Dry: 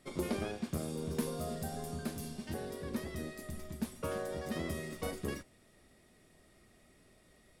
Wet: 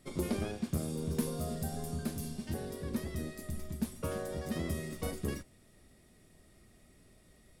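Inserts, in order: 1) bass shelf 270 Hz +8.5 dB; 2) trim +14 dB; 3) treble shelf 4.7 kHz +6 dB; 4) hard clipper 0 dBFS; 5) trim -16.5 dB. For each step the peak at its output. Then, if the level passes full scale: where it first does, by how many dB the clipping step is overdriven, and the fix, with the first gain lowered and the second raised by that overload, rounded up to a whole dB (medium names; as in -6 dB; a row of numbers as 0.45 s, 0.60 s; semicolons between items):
-16.5 dBFS, -2.5 dBFS, -2.0 dBFS, -2.0 dBFS, -18.5 dBFS; nothing clips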